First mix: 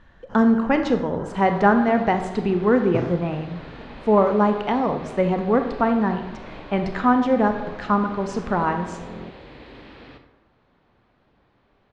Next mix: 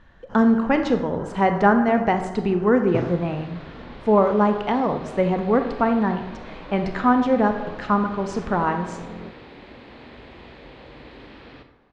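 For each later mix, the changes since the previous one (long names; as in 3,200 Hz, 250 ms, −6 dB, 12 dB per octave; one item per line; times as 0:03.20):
second sound: entry +1.45 s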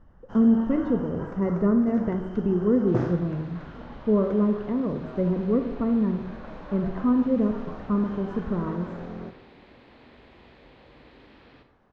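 speech: add moving average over 55 samples
second sound −9.0 dB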